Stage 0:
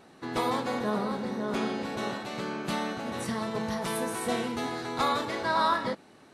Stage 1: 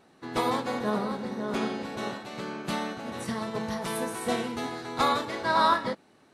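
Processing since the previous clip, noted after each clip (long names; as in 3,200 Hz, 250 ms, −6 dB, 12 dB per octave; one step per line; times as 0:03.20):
expander for the loud parts 1.5 to 1, over −40 dBFS
level +3.5 dB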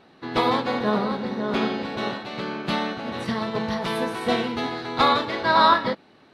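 high shelf with overshoot 5,600 Hz −11 dB, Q 1.5
level +5.5 dB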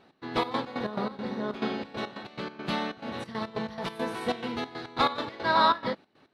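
gate pattern "x.xx.x.x.x.xx" 139 BPM −12 dB
level −5 dB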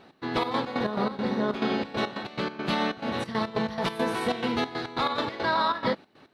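brickwall limiter −22 dBFS, peak gain reduction 11.5 dB
level +6 dB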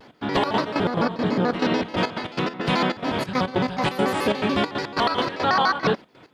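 pitch modulation by a square or saw wave square 6.9 Hz, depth 250 cents
level +5 dB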